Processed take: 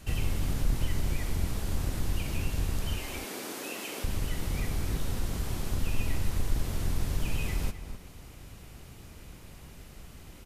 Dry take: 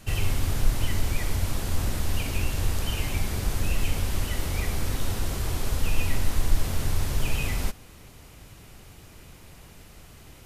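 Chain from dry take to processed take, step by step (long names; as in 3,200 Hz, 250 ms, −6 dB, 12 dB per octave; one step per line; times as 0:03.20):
sub-octave generator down 1 octave, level +2 dB
0:02.99–0:04.04: high-pass filter 280 Hz 24 dB per octave
slap from a distant wall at 44 metres, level −12 dB
in parallel at −1 dB: downward compressor, threshold −33 dBFS, peak gain reduction 19.5 dB
on the sum: level −8 dB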